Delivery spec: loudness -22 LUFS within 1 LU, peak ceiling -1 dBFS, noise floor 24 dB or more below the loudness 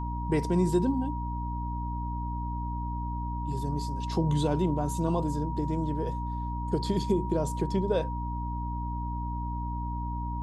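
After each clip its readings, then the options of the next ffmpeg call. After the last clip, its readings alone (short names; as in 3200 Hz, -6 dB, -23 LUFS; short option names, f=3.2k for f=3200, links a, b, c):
hum 60 Hz; harmonics up to 300 Hz; hum level -31 dBFS; steady tone 950 Hz; tone level -36 dBFS; loudness -30.5 LUFS; peak -14.0 dBFS; loudness target -22.0 LUFS
-> -af "bandreject=f=60:t=h:w=6,bandreject=f=120:t=h:w=6,bandreject=f=180:t=h:w=6,bandreject=f=240:t=h:w=6,bandreject=f=300:t=h:w=6"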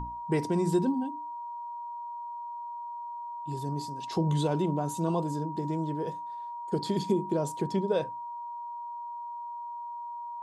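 hum none; steady tone 950 Hz; tone level -36 dBFS
-> -af "bandreject=f=950:w=30"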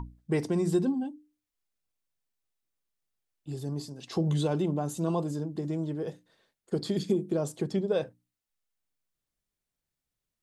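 steady tone none; loudness -31.0 LUFS; peak -15.0 dBFS; loudness target -22.0 LUFS
-> -af "volume=9dB"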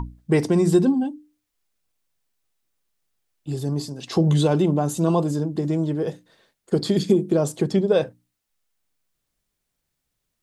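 loudness -22.0 LUFS; peak -6.0 dBFS; noise floor -79 dBFS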